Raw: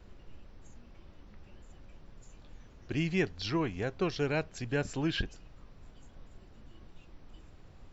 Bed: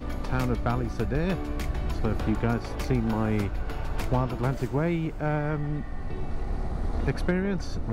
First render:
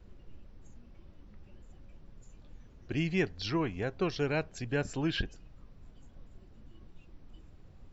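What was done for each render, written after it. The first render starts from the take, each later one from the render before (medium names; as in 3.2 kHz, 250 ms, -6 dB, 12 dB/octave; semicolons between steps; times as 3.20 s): noise reduction 6 dB, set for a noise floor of -55 dBFS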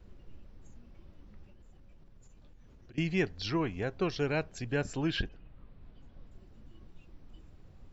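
1.45–2.98 s: compression, threshold -51 dBFS; 5.28–6.30 s: low-pass 3 kHz -> 5.8 kHz 24 dB/octave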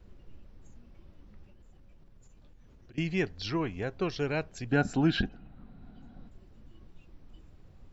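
4.71–6.29 s: small resonant body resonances 220/740/1400/3900 Hz, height 12 dB, ringing for 25 ms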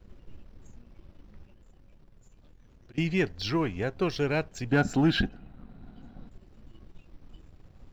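waveshaping leveller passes 1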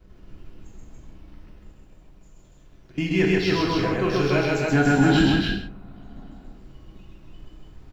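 on a send: loudspeakers at several distances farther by 45 m -1 dB, 98 m -2 dB; on the sum: gated-style reverb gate 210 ms falling, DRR -0.5 dB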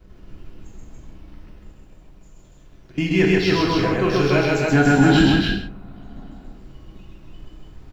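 trim +3.5 dB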